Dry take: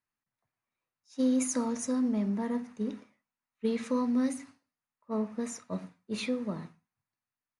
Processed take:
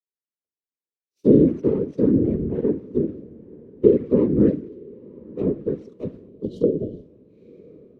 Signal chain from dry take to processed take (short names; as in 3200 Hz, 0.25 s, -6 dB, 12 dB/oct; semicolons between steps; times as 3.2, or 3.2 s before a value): median filter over 25 samples; treble ducked by the level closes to 2400 Hz, closed at -29 dBFS; HPF 290 Hz 12 dB/oct; whisperiser; resonant low shelf 620 Hz +11 dB, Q 3; on a send: diffused feedback echo 0.949 s, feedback 41%, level -15 dB; on the sum: spectral repair 6–6.84, 730–3000 Hz after; varispeed -5%; in parallel at 0 dB: compressor, threshold -41 dBFS, peak gain reduction 27.5 dB; on the sum: three-band expander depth 70%; gain -1 dB